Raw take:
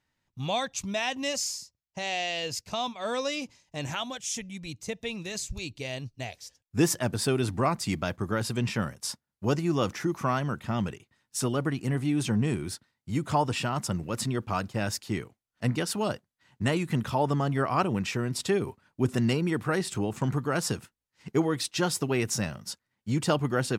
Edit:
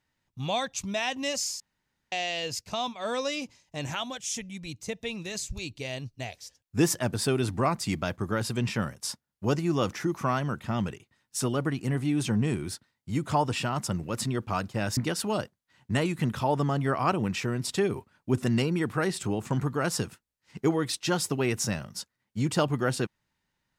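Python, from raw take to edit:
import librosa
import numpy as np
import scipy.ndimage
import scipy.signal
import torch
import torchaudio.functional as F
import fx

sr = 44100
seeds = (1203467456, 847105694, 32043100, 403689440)

y = fx.edit(x, sr, fx.room_tone_fill(start_s=1.6, length_s=0.52),
    fx.cut(start_s=14.97, length_s=0.71), tone=tone)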